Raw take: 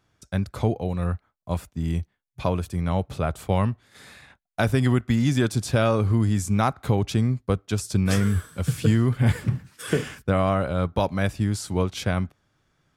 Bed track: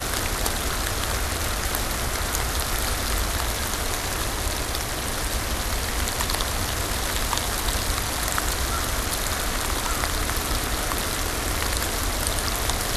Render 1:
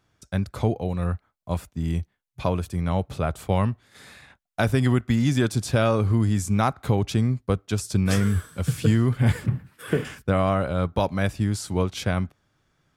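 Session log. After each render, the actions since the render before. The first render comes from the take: 9.46–10.05 bell 6200 Hz -13.5 dB 1.4 oct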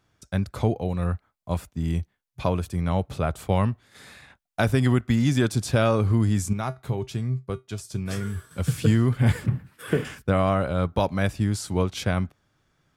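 6.53–8.51 resonator 130 Hz, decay 0.18 s, harmonics odd, mix 70%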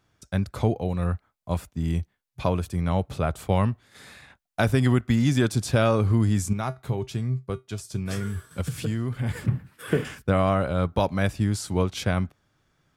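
8.61–9.37 compressor 2:1, threshold -29 dBFS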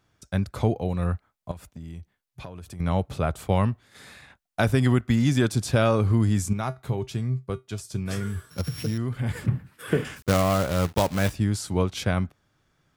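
1.51–2.8 compressor, threshold -36 dBFS; 8.5–8.98 sample sorter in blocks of 8 samples; 10.16–11.35 companded quantiser 4-bit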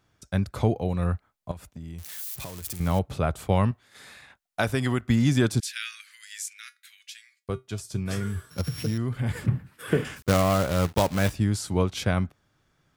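1.98–2.99 switching spikes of -28 dBFS; 3.71–5.02 low shelf 360 Hz -7.5 dB; 5.6–7.49 steep high-pass 1700 Hz 48 dB/oct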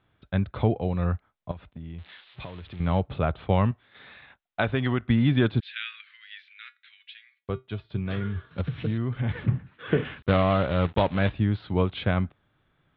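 steep low-pass 3800 Hz 72 dB/oct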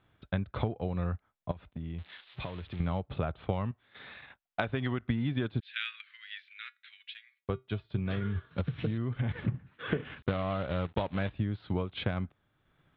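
compressor 6:1, threshold -28 dBFS, peak gain reduction 12 dB; transient shaper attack +1 dB, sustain -5 dB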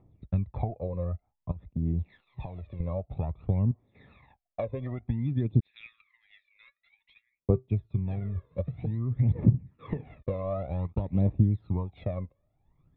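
phaser 0.53 Hz, delay 2 ms, feedback 73%; running mean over 29 samples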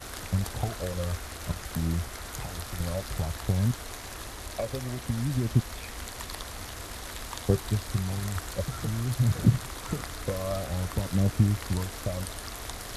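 add bed track -13.5 dB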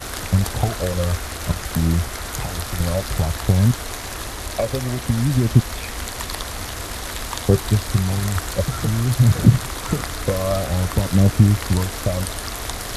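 gain +10 dB; limiter -1 dBFS, peak gain reduction 2.5 dB

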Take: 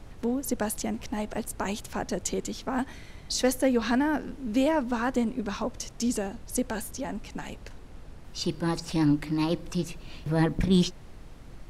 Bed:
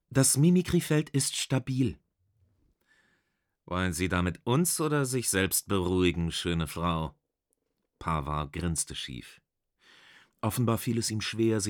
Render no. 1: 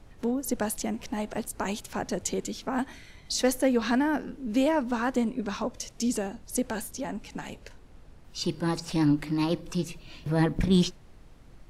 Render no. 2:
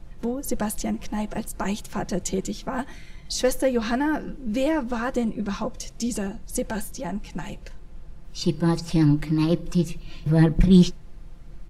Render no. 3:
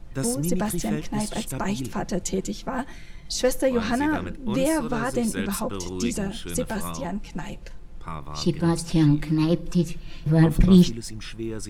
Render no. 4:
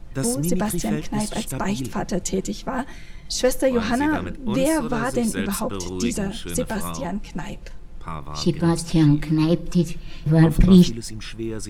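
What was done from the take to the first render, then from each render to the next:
noise print and reduce 6 dB
low shelf 160 Hz +10 dB; comb 5.8 ms, depth 55%
add bed -5.5 dB
gain +2.5 dB

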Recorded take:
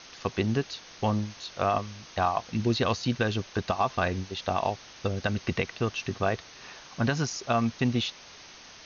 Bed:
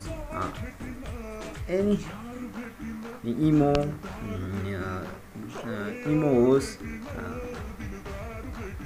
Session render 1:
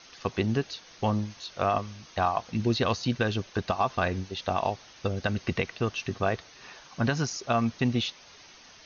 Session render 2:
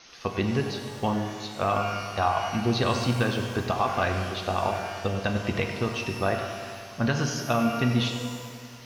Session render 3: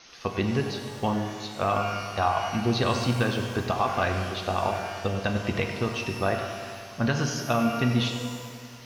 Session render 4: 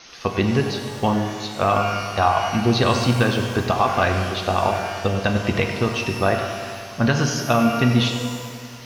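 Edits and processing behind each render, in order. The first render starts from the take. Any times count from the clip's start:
denoiser 6 dB, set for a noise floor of -49 dBFS
analogue delay 98 ms, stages 2048, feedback 78%, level -13 dB; shimmer reverb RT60 1.2 s, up +12 st, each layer -8 dB, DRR 4.5 dB
nothing audible
gain +6.5 dB

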